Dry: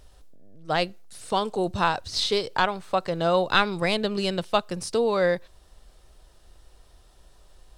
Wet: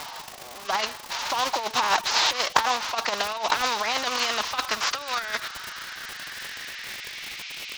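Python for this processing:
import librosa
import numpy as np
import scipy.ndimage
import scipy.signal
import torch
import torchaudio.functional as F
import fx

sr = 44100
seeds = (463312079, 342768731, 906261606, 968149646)

y = fx.cvsd(x, sr, bps=32000)
y = fx.low_shelf(y, sr, hz=370.0, db=-3.0)
y = fx.over_compress(y, sr, threshold_db=-29.0, ratio=-0.5)
y = fx.filter_sweep_highpass(y, sr, from_hz=910.0, to_hz=2500.0, start_s=3.99, end_s=7.76, q=6.2)
y = fx.dmg_crackle(y, sr, seeds[0], per_s=100.0, level_db=-39.0)
y = fx.pitch_keep_formants(y, sr, semitones=3.5)
y = fx.spectral_comp(y, sr, ratio=2.0)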